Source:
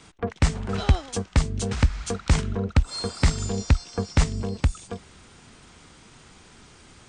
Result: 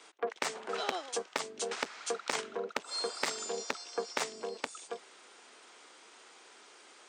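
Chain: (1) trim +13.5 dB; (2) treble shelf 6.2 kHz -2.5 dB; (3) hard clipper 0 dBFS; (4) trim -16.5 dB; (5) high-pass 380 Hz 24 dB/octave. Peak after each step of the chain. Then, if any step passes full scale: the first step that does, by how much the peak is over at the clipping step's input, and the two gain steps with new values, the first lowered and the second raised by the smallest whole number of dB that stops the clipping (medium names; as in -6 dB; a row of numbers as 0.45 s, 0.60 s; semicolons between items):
+5.0 dBFS, +5.0 dBFS, 0.0 dBFS, -16.5 dBFS, -13.0 dBFS; step 1, 5.0 dB; step 1 +8.5 dB, step 4 -11.5 dB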